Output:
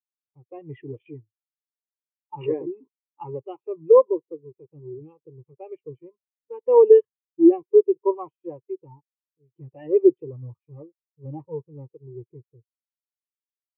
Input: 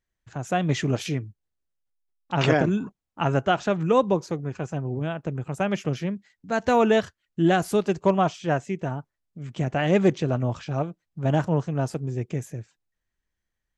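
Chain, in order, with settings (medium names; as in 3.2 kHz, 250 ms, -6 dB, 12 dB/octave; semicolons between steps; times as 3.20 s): in parallel at -8 dB: fuzz box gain 29 dB, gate -37 dBFS; on the sum: low-pass 3.6 kHz 12 dB/octave; bass shelf 77 Hz -11.5 dB; static phaser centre 1 kHz, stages 8; spectral contrast expander 2.5:1; trim +4.5 dB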